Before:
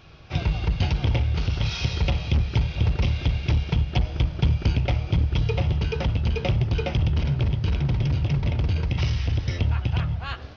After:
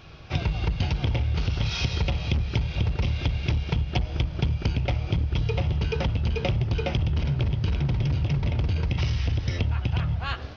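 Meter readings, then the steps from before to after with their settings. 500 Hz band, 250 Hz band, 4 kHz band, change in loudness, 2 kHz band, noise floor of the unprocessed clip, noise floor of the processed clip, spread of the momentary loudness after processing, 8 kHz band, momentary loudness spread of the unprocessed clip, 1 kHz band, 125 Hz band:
-1.0 dB, -1.5 dB, -0.5 dB, -2.0 dB, -0.5 dB, -37 dBFS, -36 dBFS, 2 LU, no reading, 3 LU, -1.0 dB, -2.0 dB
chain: compression 4:1, threshold -24 dBFS, peak gain reduction 8 dB; trim +2.5 dB

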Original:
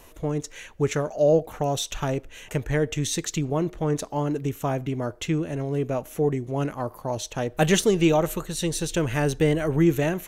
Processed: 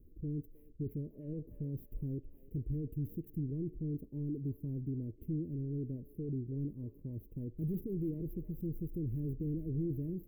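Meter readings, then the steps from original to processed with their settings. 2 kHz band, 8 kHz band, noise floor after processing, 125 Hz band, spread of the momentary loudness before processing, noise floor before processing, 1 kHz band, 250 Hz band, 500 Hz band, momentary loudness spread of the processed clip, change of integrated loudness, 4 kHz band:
under -40 dB, under -40 dB, -59 dBFS, -10.0 dB, 9 LU, -48 dBFS, under -40 dB, -12.5 dB, -22.5 dB, 7 LU, -14.5 dB, under -40 dB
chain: median filter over 9 samples; saturation -24 dBFS, distortion -8 dB; inverse Chebyshev band-stop 690–8200 Hz, stop band 40 dB; bass shelf 220 Hz +4 dB; feedback echo behind a band-pass 310 ms, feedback 36%, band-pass 1.5 kHz, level -4 dB; trim -8.5 dB

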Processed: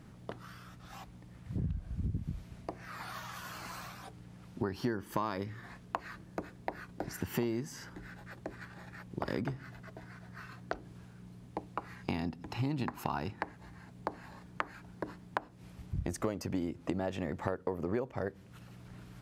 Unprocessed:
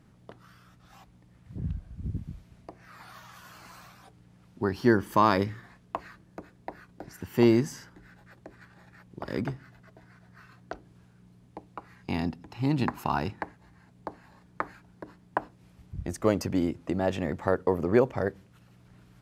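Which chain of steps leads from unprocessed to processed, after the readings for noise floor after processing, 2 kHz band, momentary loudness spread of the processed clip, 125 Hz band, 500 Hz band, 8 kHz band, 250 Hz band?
-54 dBFS, -6.0 dB, 16 LU, -5.0 dB, -10.0 dB, -2.5 dB, -9.0 dB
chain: compression 8:1, threshold -36 dBFS, peak gain reduction 20 dB; trim +5 dB

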